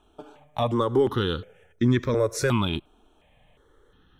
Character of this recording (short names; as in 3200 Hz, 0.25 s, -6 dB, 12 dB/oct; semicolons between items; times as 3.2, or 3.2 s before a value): notches that jump at a steady rate 2.8 Hz 530–2900 Hz